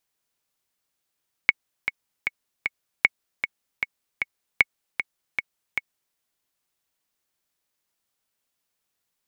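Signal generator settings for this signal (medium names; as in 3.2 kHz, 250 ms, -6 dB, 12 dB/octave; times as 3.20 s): metronome 154 bpm, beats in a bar 4, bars 3, 2.21 kHz, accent 9 dB -1.5 dBFS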